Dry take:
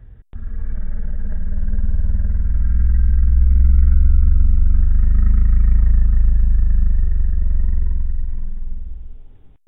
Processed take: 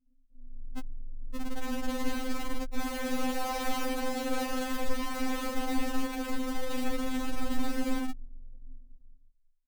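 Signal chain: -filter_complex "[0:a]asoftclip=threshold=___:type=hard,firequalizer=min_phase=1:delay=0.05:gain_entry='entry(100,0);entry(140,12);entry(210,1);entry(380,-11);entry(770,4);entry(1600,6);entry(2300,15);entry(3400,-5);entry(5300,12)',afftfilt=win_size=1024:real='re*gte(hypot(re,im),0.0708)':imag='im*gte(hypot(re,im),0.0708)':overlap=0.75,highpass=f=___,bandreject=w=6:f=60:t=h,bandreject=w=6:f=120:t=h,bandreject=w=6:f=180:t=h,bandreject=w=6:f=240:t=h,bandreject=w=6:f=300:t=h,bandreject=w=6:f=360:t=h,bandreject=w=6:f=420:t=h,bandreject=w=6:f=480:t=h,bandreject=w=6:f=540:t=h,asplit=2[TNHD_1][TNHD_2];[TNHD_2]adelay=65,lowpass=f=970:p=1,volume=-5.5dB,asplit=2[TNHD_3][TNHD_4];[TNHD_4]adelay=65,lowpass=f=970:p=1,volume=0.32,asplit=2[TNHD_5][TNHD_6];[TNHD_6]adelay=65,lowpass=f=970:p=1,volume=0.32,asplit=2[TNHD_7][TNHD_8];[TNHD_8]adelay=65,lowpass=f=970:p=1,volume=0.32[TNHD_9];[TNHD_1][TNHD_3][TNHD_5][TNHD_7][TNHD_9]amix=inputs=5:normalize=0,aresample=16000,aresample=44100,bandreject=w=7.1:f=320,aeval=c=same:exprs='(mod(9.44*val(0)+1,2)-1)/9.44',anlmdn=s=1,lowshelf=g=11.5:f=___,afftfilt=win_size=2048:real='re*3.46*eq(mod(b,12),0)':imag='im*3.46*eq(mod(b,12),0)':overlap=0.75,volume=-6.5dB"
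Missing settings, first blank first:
-8.5dB, 46, 97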